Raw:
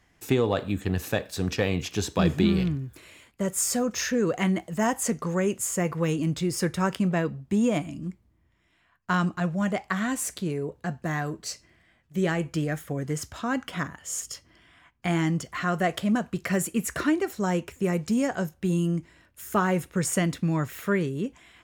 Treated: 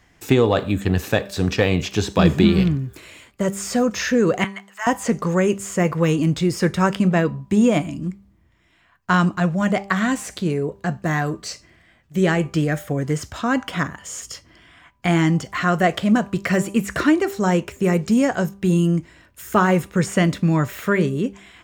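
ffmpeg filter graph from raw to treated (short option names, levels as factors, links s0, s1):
-filter_complex "[0:a]asettb=1/sr,asplit=3[s0][s1][s2];[s0]atrim=end=4.444[s3];[s1]atrim=start=4.44:end=4.87,asetpts=PTS-STARTPTS,afade=t=in:d=0.004:c=qsin,afade=t=out:st=0.426:d=0.004:c=qsin,highpass=f=1100:w=0.5412,highpass=f=1100:w=1.3066,highshelf=f=3900:g=-11.5[s4];[s2]atrim=start=4.866[s5];[s3][s4]acrossfade=d=0.004:c1=hsin:c2=qsin[s6];[s6][s5]acrossfade=d=0.004:c1=qsin:c2=hsin,acrossover=split=4600[s7][s8];[s8]acompressor=threshold=0.01:ratio=4:attack=1:release=60[s9];[s7][s9]amix=inputs=2:normalize=0,equalizer=f=11000:t=o:w=0.21:g=-7,bandreject=f=197.5:t=h:w=4,bandreject=f=395:t=h:w=4,bandreject=f=592.5:t=h:w=4,bandreject=f=790:t=h:w=4,bandreject=f=987.5:t=h:w=4,bandreject=f=1185:t=h:w=4,volume=2.37"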